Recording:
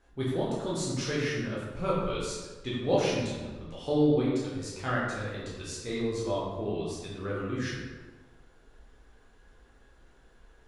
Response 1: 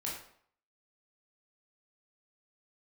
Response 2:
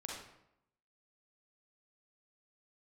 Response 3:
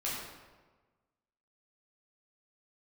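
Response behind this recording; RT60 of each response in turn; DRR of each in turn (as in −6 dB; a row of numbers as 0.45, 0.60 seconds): 3; 0.60, 0.80, 1.3 seconds; −5.0, −3.0, −7.5 decibels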